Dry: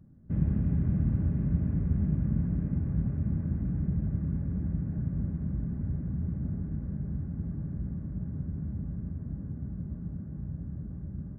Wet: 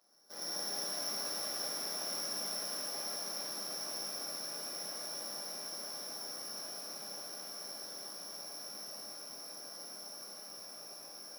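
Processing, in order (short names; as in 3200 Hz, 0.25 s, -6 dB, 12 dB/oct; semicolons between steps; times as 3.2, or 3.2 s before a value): sample sorter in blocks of 8 samples; HPF 610 Hz 24 dB/oct; shimmer reverb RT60 3.4 s, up +12 st, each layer -8 dB, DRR -10 dB; gain +1 dB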